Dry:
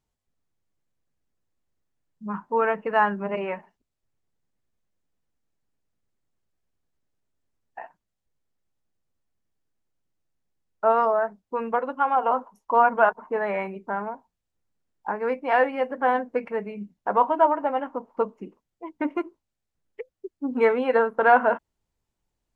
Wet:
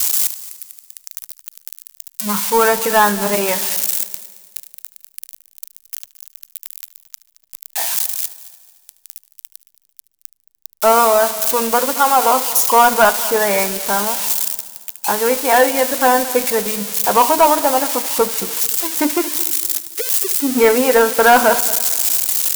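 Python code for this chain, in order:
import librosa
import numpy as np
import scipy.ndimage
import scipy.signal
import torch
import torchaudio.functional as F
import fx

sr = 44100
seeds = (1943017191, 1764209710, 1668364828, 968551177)

y = x + 0.5 * 10.0 ** (-19.0 / 20.0) * np.diff(np.sign(x), prepend=np.sign(x[:1]))
y = fx.high_shelf(y, sr, hz=3700.0, db=6.0)
y = fx.leveller(y, sr, passes=2)
y = fx.echo_heads(y, sr, ms=74, heads='first and third', feedback_pct=51, wet_db=-18.0)
y = y * 10.0 ** (1.5 / 20.0)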